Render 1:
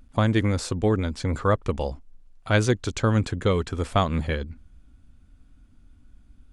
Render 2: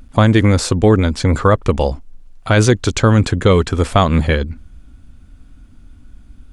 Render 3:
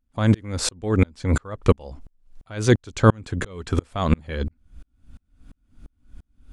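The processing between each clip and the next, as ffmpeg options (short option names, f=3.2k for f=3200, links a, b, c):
-af "alimiter=level_in=12.5dB:limit=-1dB:release=50:level=0:latency=1,volume=-1dB"
-af "aeval=exprs='val(0)*pow(10,-39*if(lt(mod(-2.9*n/s,1),2*abs(-2.9)/1000),1-mod(-2.9*n/s,1)/(2*abs(-2.9)/1000),(mod(-2.9*n/s,1)-2*abs(-2.9)/1000)/(1-2*abs(-2.9)/1000))/20)':c=same,volume=2dB"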